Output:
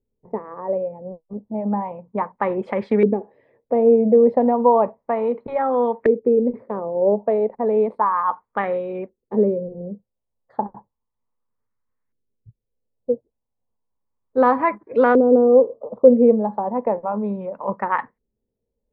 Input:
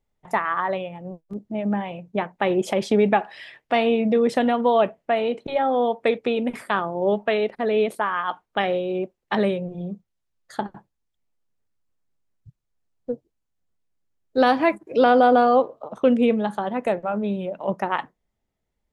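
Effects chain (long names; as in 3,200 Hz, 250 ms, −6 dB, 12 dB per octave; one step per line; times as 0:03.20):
EQ curve with evenly spaced ripples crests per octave 0.94, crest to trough 8 dB
auto-filter low-pass saw up 0.33 Hz 370–1,700 Hz
level −2 dB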